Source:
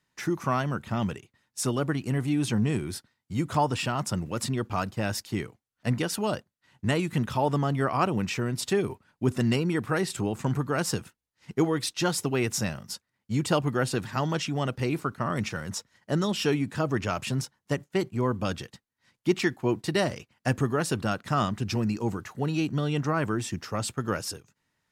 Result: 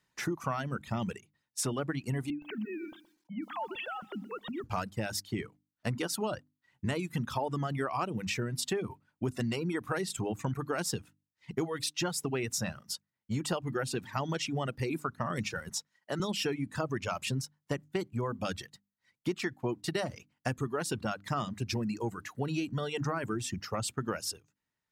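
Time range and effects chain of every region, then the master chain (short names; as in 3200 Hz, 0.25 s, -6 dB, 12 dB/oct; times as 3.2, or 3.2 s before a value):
2.3–4.64 sine-wave speech + compressor 3:1, threshold -36 dBFS + lo-fi delay 0.122 s, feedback 35%, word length 10-bit, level -9.5 dB
15.69–16.2 HPF 150 Hz 24 dB/oct + bell 240 Hz -8 dB 2.2 oct
whole clip: notches 50/100/150/200/250/300 Hz; reverb removal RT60 1.3 s; compressor, threshold -29 dBFS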